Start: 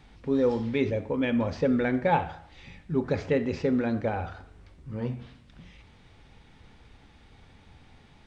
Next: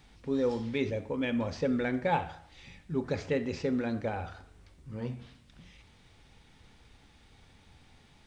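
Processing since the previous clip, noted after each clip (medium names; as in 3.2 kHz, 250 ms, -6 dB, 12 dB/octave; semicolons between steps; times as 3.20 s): treble shelf 4.6 kHz +11 dB; trim -5 dB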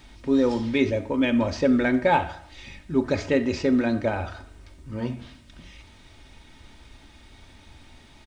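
comb 3.2 ms, depth 48%; trim +8 dB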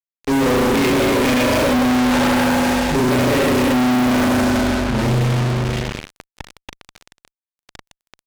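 spring tank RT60 2.2 s, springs 32/40 ms, chirp 60 ms, DRR -8 dB; fuzz box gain 38 dB, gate -31 dBFS; trim -1.5 dB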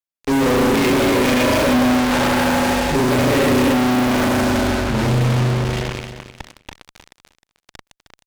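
feedback delay 310 ms, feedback 17%, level -11 dB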